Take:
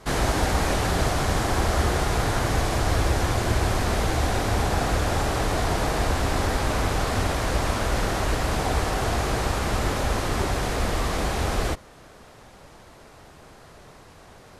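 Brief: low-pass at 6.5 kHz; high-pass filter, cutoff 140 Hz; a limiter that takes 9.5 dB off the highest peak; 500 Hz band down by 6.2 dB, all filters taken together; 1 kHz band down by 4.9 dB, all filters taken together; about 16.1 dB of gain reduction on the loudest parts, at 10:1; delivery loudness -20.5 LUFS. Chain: high-pass 140 Hz; low-pass 6.5 kHz; peaking EQ 500 Hz -7 dB; peaking EQ 1 kHz -4 dB; compression 10:1, threshold -42 dBFS; trim +27.5 dB; peak limiter -11 dBFS

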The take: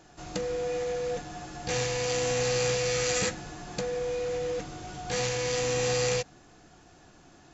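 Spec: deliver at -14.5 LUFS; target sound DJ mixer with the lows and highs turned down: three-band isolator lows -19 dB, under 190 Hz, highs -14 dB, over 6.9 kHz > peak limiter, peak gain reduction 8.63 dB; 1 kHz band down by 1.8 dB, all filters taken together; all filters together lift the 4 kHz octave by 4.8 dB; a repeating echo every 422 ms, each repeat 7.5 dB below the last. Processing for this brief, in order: three-band isolator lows -19 dB, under 190 Hz, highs -14 dB, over 6.9 kHz; peaking EQ 1 kHz -3 dB; peaking EQ 4 kHz +7 dB; feedback delay 422 ms, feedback 42%, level -7.5 dB; trim +18 dB; peak limiter -5 dBFS

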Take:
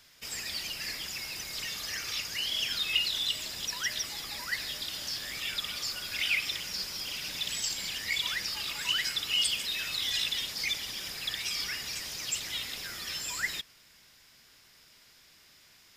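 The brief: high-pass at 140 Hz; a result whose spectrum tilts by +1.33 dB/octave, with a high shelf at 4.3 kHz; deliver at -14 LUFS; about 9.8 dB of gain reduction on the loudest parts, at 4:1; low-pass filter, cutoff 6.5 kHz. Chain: high-pass 140 Hz; low-pass 6.5 kHz; treble shelf 4.3 kHz +5.5 dB; compression 4:1, threshold -33 dBFS; trim +20 dB

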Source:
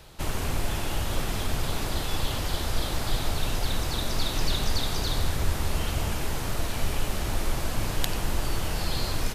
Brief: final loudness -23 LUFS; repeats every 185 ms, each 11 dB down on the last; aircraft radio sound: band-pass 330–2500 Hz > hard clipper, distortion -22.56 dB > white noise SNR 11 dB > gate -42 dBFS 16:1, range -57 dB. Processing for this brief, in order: band-pass 330–2500 Hz; feedback delay 185 ms, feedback 28%, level -11 dB; hard clipper -29 dBFS; white noise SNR 11 dB; gate -42 dBFS 16:1, range -57 dB; trim +12.5 dB

